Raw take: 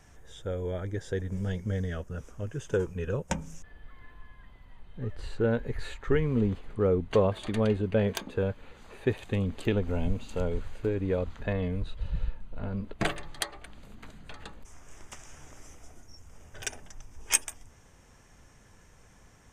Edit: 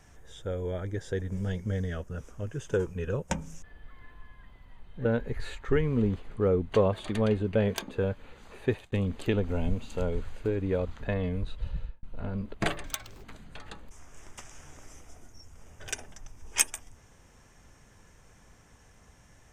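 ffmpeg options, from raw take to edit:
-filter_complex "[0:a]asplit=6[a][b][c][d][e][f];[a]atrim=end=5.052[g];[b]atrim=start=5.438:end=9.31,asetpts=PTS-STARTPTS,afade=t=out:st=3.602:d=0.27:c=qsin[h];[c]atrim=start=9.31:end=12.42,asetpts=PTS-STARTPTS,afade=t=in:d=0.004:c=hsin,afade=t=out:st=2.73:d=0.38[i];[d]atrim=start=12.42:end=13.234,asetpts=PTS-STARTPTS,afade=t=in:d=0.004:c=hsin[j];[e]atrim=start=13.23:end=13.98,asetpts=PTS-STARTPTS,asetrate=82908,aresample=44100,atrim=end_sample=17593,asetpts=PTS-STARTPTS[k];[f]atrim=start=13.976[l];[h][i][j]concat=n=3:v=0:a=1[m];[g][m]acrossfade=d=0.004:c1=hsin:c2=hsin[n];[n][k]acrossfade=d=0.004:c1=hsin:c2=hsin[o];[o][l]acrossfade=d=0.004:c1=hsin:c2=hsin"

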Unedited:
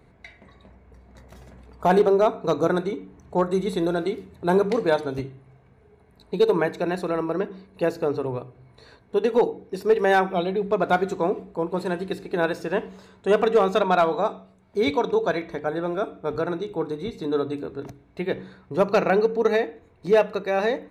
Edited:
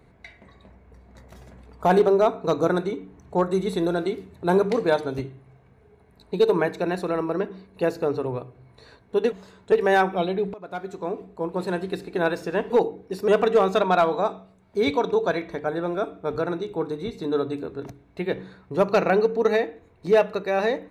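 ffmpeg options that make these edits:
-filter_complex "[0:a]asplit=6[a][b][c][d][e][f];[a]atrim=end=9.322[g];[b]atrim=start=12.878:end=13.282[h];[c]atrim=start=9.898:end=10.72,asetpts=PTS-STARTPTS,afade=t=out:st=0.818:d=0.004:c=hsin:silence=0.0707946[i];[d]atrim=start=10.72:end=12.882,asetpts=PTS-STARTPTS,afade=t=in:d=1.16:silence=0.0707946[j];[e]atrim=start=9.318:end=9.902[k];[f]atrim=start=13.278[l];[g][h]acrossfade=d=0.004:c1=hsin:c2=hsin[m];[i][j]concat=n=2:v=0:a=1[n];[m][n]acrossfade=d=0.004:c1=hsin:c2=hsin[o];[o][k]acrossfade=d=0.004:c1=hsin:c2=hsin[p];[p][l]acrossfade=d=0.004:c1=hsin:c2=hsin"

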